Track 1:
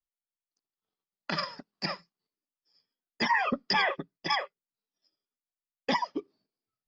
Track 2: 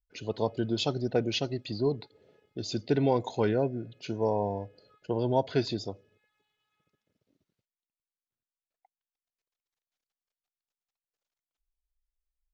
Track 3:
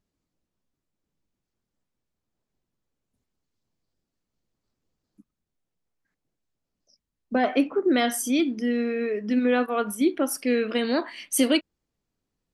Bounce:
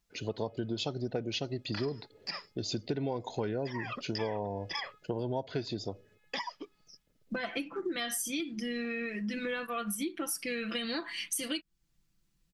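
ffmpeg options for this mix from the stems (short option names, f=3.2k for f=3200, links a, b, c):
-filter_complex "[0:a]adelay=450,volume=-5.5dB[a];[1:a]volume=2dB,asplit=2[b][c];[2:a]asubboost=boost=7:cutoff=200,aecho=1:1:5.9:0.81,volume=-2dB[d];[c]apad=whole_len=323187[e];[a][e]sidechaincompress=threshold=-27dB:ratio=8:attack=16:release=832[f];[f][d]amix=inputs=2:normalize=0,tiltshelf=f=870:g=-7,acompressor=threshold=-35dB:ratio=2,volume=0dB[g];[b][g]amix=inputs=2:normalize=0,acompressor=threshold=-31dB:ratio=5"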